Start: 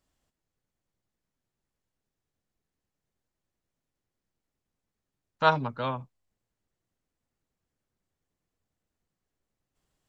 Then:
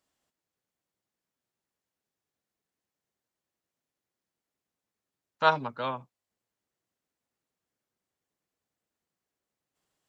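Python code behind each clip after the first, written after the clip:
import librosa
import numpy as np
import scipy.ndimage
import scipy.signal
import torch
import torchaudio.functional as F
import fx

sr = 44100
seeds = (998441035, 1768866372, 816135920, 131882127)

y = fx.highpass(x, sr, hz=310.0, slope=6)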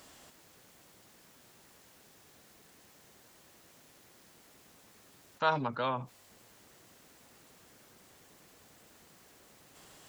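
y = fx.env_flatten(x, sr, amount_pct=50)
y = y * librosa.db_to_amplitude(-7.0)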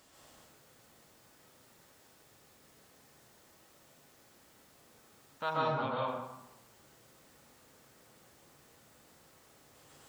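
y = fx.rev_plate(x, sr, seeds[0], rt60_s=0.93, hf_ratio=0.65, predelay_ms=115, drr_db=-4.5)
y = y * librosa.db_to_amplitude(-7.5)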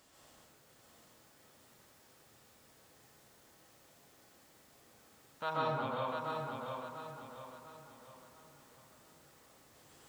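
y = fx.echo_feedback(x, sr, ms=695, feedback_pct=40, wet_db=-5)
y = y * librosa.db_to_amplitude(-2.5)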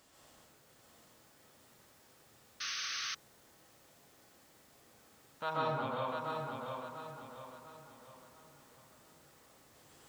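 y = fx.spec_paint(x, sr, seeds[1], shape='noise', start_s=2.6, length_s=0.55, low_hz=1100.0, high_hz=6400.0, level_db=-39.0)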